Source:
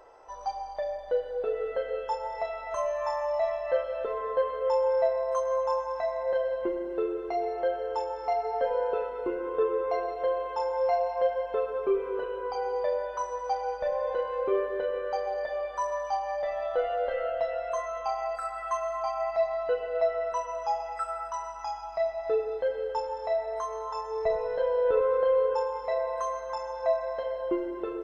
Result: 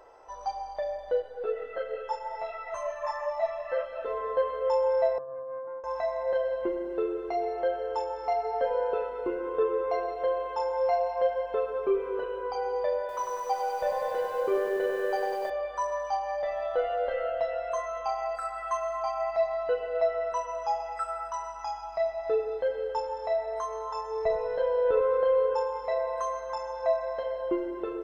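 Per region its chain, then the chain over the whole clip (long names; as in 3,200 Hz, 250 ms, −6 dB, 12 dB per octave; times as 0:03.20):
0:01.22–0:04.06: dynamic equaliser 1,600 Hz, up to +4 dB, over −47 dBFS, Q 1.6 + string-ensemble chorus
0:05.18–0:05.84: flat-topped band-pass 300 Hz, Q 1.3 + highs frequency-modulated by the lows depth 0.25 ms
0:12.99–0:15.50: mains-hum notches 50/100/150/200/250/300 Hz + feedback echo at a low word length 98 ms, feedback 80%, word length 9 bits, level −4.5 dB
whole clip: no processing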